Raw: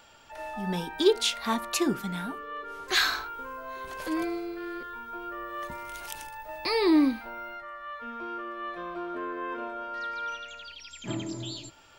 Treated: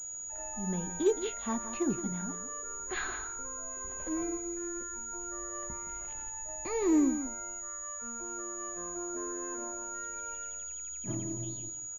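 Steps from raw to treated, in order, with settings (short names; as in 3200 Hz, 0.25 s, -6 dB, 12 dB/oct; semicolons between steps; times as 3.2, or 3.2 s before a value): tilt -2.5 dB/oct; echo 0.169 s -10.5 dB; pulse-width modulation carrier 6800 Hz; gain -8.5 dB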